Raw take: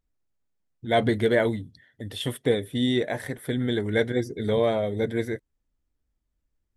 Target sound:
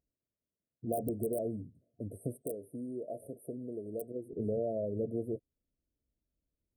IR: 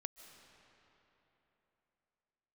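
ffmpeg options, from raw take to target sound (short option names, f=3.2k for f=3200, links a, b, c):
-af "highshelf=f=3k:g=-10.5,aeval=exprs='(mod(4.22*val(0)+1,2)-1)/4.22':c=same,acompressor=threshold=-28dB:ratio=6,asetnsamples=n=441:p=0,asendcmd='2.42 highpass f 570;4.33 highpass f 100',highpass=f=120:p=1,afftfilt=real='re*(1-between(b*sr/4096,710,8200))':imag='im*(1-between(b*sr/4096,710,8200))':win_size=4096:overlap=0.75,volume=-2dB"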